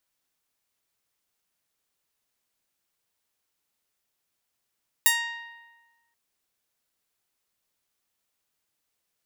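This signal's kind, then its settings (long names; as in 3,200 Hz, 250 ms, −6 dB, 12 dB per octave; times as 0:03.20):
Karplus-Strong string A#5, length 1.08 s, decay 1.32 s, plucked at 0.22, bright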